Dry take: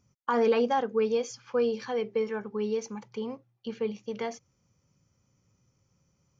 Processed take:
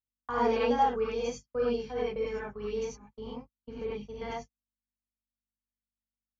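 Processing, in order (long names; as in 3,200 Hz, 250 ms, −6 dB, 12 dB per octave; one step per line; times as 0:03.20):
mains hum 50 Hz, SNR 10 dB
noise gate −33 dBFS, range −52 dB
reverb whose tail is shaped and stops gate 120 ms rising, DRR −7.5 dB
level −9 dB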